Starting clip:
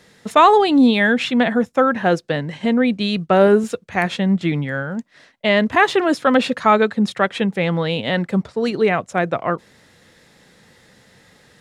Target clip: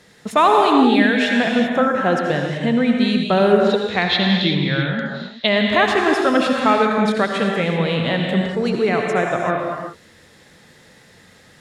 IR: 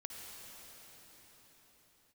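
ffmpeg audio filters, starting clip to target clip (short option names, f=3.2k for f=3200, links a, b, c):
-filter_complex "[0:a]asplit=2[a][b];[b]acompressor=threshold=-21dB:ratio=6,volume=-2.5dB[c];[a][c]amix=inputs=2:normalize=0,asplit=3[d][e][f];[d]afade=t=out:st=3.57:d=0.02[g];[e]lowpass=f=3.9k:t=q:w=8.6,afade=t=in:st=3.57:d=0.02,afade=t=out:st=5.46:d=0.02[h];[f]afade=t=in:st=5.46:d=0.02[i];[g][h][i]amix=inputs=3:normalize=0[j];[1:a]atrim=start_sample=2205,afade=t=out:st=0.36:d=0.01,atrim=end_sample=16317,asetrate=34839,aresample=44100[k];[j][k]afir=irnorm=-1:irlink=0"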